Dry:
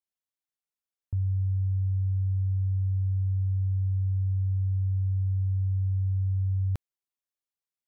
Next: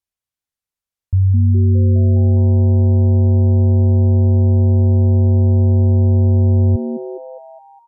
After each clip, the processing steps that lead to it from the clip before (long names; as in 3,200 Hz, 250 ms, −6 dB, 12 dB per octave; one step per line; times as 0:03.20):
treble cut that deepens with the level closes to 300 Hz
low shelf with overshoot 140 Hz +8 dB, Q 1.5
on a send: echo with shifted repeats 205 ms, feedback 53%, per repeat +140 Hz, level −11 dB
on the sum: level +4 dB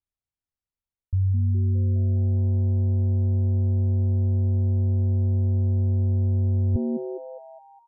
spectral tilt −2.5 dB per octave
reversed playback
downward compressor, threshold −13 dBFS, peak gain reduction 10.5 dB
reversed playback
level −7.5 dB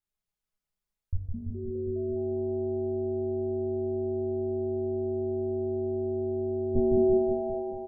comb filter 4.8 ms, depth 53%
on a send: reverse bouncing-ball delay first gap 160 ms, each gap 1.1×, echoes 5
on the sum: rectangular room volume 130 cubic metres, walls furnished, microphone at 0.64 metres
level −1 dB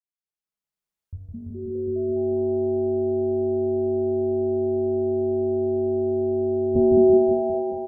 fade in at the beginning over 2.27 s
high-pass filter 140 Hz 6 dB per octave
level +8 dB